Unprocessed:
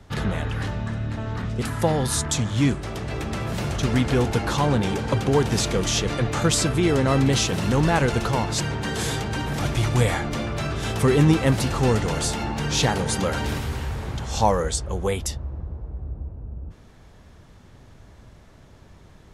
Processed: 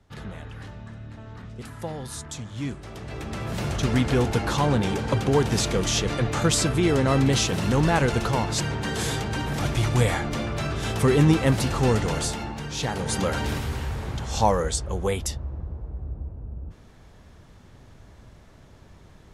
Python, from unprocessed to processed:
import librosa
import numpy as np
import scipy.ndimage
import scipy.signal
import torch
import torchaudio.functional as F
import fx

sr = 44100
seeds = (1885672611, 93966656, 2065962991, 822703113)

y = fx.gain(x, sr, db=fx.line((2.5, -12.0), (3.67, -1.0), (12.15, -1.0), (12.74, -9.0), (13.18, -1.0)))